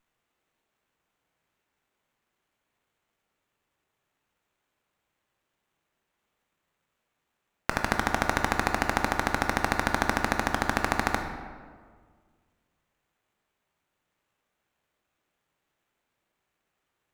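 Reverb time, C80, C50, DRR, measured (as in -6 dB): 1.8 s, 7.5 dB, 6.0 dB, 4.0 dB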